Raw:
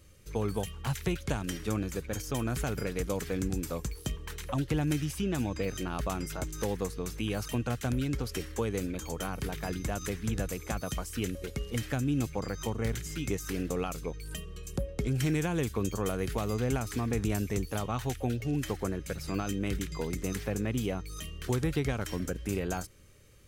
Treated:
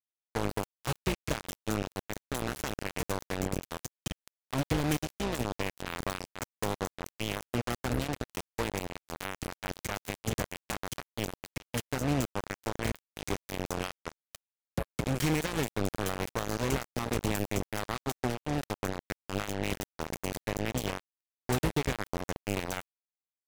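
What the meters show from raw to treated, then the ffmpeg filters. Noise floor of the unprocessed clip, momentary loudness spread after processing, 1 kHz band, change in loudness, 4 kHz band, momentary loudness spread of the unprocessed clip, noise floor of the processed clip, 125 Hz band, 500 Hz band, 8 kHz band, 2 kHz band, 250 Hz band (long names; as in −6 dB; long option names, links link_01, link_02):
−45 dBFS, 9 LU, +2.5 dB, −1.0 dB, +2.5 dB, 6 LU, below −85 dBFS, −3.5 dB, −1.0 dB, 0.0 dB, +2.5 dB, −2.5 dB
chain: -af "aeval=exprs='0.133*(cos(1*acos(clip(val(0)/0.133,-1,1)))-cos(1*PI/2))+0.0266*(cos(7*acos(clip(val(0)/0.133,-1,1)))-cos(7*PI/2))':channel_layout=same,acrusher=bits=4:mix=0:aa=0.5"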